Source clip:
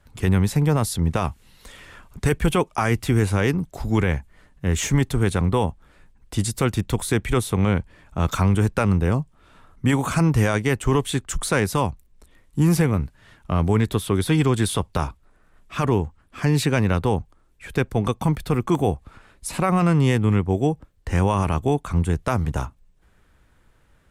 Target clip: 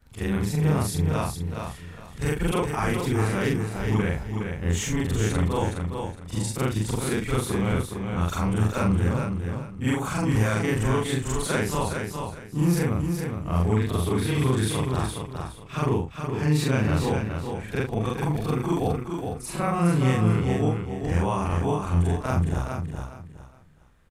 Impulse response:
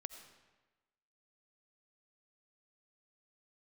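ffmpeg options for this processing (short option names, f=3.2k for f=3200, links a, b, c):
-af "afftfilt=real='re':imag='-im':win_size=4096:overlap=0.75,aecho=1:1:415|830|1245:0.531|0.138|0.0359"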